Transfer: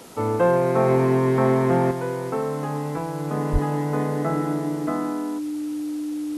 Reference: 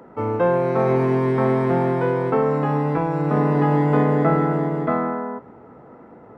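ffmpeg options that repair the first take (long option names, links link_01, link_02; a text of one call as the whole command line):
ffmpeg -i in.wav -filter_complex "[0:a]bandreject=frequency=300:width=30,asplit=3[link_01][link_02][link_03];[link_01]afade=type=out:start_time=3.52:duration=0.02[link_04];[link_02]highpass=frequency=140:width=0.5412,highpass=frequency=140:width=1.3066,afade=type=in:start_time=3.52:duration=0.02,afade=type=out:start_time=3.64:duration=0.02[link_05];[link_03]afade=type=in:start_time=3.64:duration=0.02[link_06];[link_04][link_05][link_06]amix=inputs=3:normalize=0,afwtdn=0.0045,asetnsamples=nb_out_samples=441:pad=0,asendcmd='1.91 volume volume 6.5dB',volume=0dB" out.wav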